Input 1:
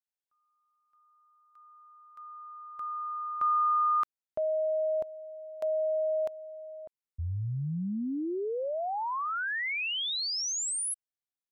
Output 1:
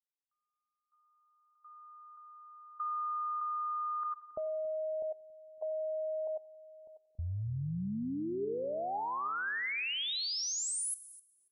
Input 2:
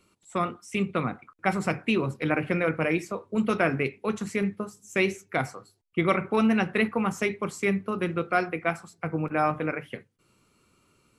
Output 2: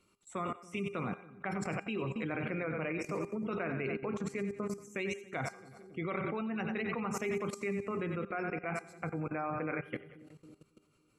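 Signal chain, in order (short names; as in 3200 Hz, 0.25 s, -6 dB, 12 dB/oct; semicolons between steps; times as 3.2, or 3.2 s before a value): spectral gate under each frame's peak -30 dB strong; split-band echo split 400 Hz, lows 0.277 s, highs 91 ms, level -11.5 dB; level quantiser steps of 18 dB; resonator 400 Hz, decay 0.76 s, mix 60%; gain +8 dB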